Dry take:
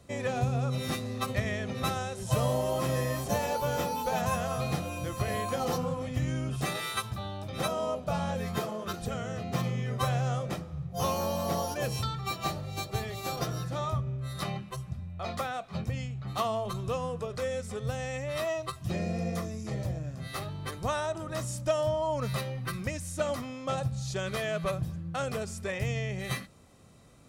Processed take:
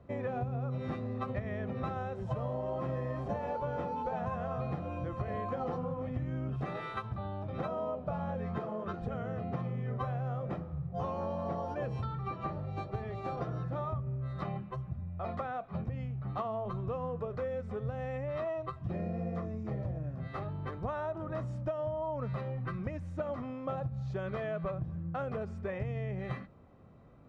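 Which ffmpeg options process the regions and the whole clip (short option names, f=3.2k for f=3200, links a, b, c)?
-filter_complex "[0:a]asettb=1/sr,asplit=3[a][b][c];[a]atrim=end=12.124[d];[b]atrim=start=12.12:end=12.61,asetpts=PTS-STARTPTS,afade=t=in:d=0.004:c=qsin,afade=t=out:st=0.486:d=0.004:c=qsin,acrossover=split=3000[e][f];[f]acompressor=threshold=-45dB:ratio=4:attack=1:release=60[g];[e][g]amix=inputs=2:normalize=0,asuperstop=centerf=710:order=4:qfactor=5.9[h];[c]atrim=start=12.606[i];[d][h]acrossfade=d=0.004:c1=hsin:c2=qsin[j];[j][i]acrossfade=d=0.004:c1=qsin:c2=hsin,lowpass=1.4k,acompressor=threshold=-32dB:ratio=6"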